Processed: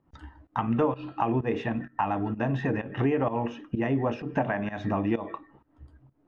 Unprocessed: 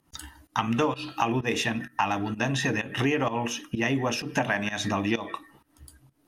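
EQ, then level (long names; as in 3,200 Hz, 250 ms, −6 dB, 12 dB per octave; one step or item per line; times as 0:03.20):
low-pass filter 2,000 Hz 12 dB per octave
low-shelf EQ 210 Hz +9.5 dB
parametric band 570 Hz +7 dB 2.3 octaves
−7.0 dB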